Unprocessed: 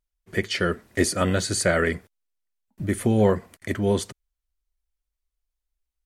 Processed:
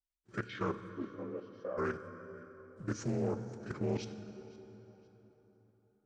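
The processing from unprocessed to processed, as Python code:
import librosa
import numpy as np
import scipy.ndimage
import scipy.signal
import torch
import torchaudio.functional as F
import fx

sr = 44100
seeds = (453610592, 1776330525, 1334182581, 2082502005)

y = fx.partial_stretch(x, sr, pct=87)
y = fx.level_steps(y, sr, step_db=13)
y = fx.bandpass_q(y, sr, hz=fx.line((0.88, 240.0), (1.77, 660.0)), q=2.7, at=(0.88, 1.77), fade=0.02)
y = fx.echo_feedback(y, sr, ms=515, feedback_pct=29, wet_db=-22)
y = fx.rev_plate(y, sr, seeds[0], rt60_s=4.2, hf_ratio=0.6, predelay_ms=0, drr_db=9.0)
y = fx.doppler_dist(y, sr, depth_ms=0.32)
y = F.gain(torch.from_numpy(y), -7.0).numpy()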